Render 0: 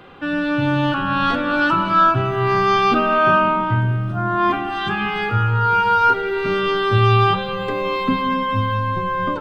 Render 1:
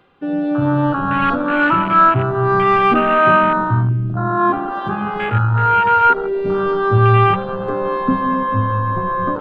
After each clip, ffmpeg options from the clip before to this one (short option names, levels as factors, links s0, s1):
-af "afwtdn=0.1,areverse,acompressor=mode=upward:threshold=0.0282:ratio=2.5,areverse,volume=1.41"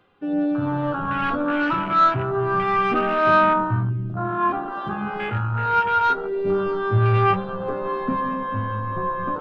-af "asoftclip=type=tanh:threshold=0.531,flanger=delay=9.6:depth=4.4:regen=51:speed=0.29:shape=sinusoidal,volume=0.841"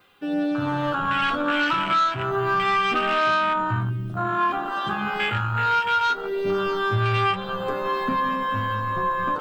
-af "adynamicequalizer=threshold=0.00355:dfrequency=3200:dqfactor=7.9:tfrequency=3200:tqfactor=7.9:attack=5:release=100:ratio=0.375:range=2:mode=boostabove:tftype=bell,crystalizer=i=9.5:c=0,acompressor=threshold=0.158:ratio=6,volume=0.75"